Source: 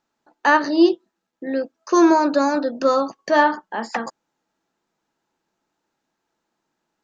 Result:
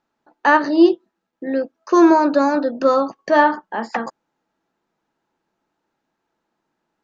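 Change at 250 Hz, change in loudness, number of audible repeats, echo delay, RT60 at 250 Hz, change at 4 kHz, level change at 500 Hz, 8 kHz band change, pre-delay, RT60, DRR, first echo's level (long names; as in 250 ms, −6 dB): +2.5 dB, +2.0 dB, no echo audible, no echo audible, no reverb audible, −2.0 dB, +2.5 dB, can't be measured, no reverb audible, no reverb audible, no reverb audible, no echo audible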